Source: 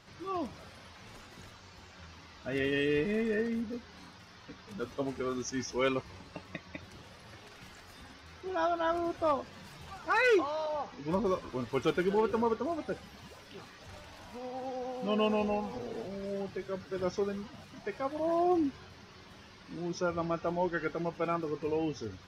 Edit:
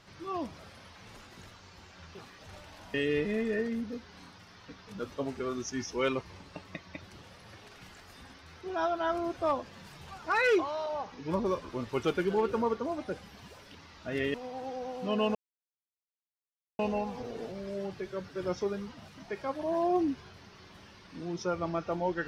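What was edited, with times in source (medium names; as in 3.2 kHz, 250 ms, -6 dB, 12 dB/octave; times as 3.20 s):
2.15–2.74 s: swap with 13.55–14.34 s
15.35 s: insert silence 1.44 s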